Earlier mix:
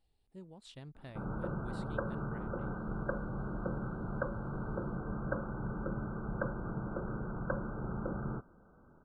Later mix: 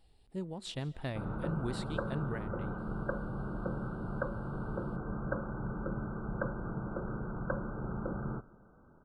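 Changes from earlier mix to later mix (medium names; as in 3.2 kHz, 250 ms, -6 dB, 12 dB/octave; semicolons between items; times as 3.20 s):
speech +11.0 dB; reverb: on, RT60 0.75 s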